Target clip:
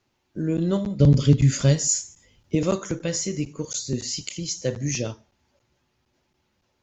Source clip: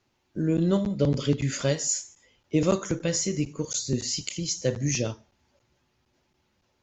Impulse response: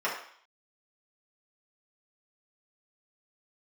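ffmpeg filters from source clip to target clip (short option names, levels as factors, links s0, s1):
-filter_complex "[0:a]asettb=1/sr,asplit=3[s0][s1][s2];[s0]atrim=end=1.004[s3];[s1]atrim=start=1:end=2.55,asetpts=PTS-STARTPTS,afade=t=in:d=0.004:c=qsin,afade=t=out:st=1.546:d=0.004:c=qsin,bass=f=250:g=12,treble=f=4000:g=5[s4];[s2]atrim=start=2.546[s5];[s3][s4]acrossfade=d=0.004:c1=hsin:c2=qsin[s6];[s6][s5]acrossfade=d=0.004:c1=qsin:c2=hsin"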